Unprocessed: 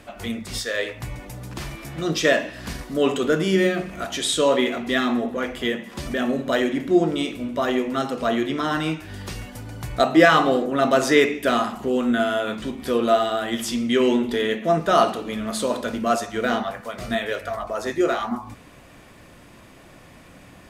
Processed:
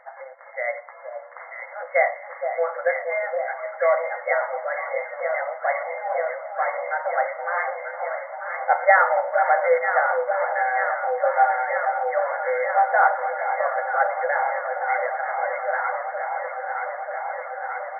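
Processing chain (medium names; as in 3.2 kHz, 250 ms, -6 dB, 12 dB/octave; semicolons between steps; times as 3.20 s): FFT band-pass 420–1900 Hz; wide varispeed 1.15×; echo whose repeats swap between lows and highs 469 ms, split 1 kHz, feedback 90%, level -6.5 dB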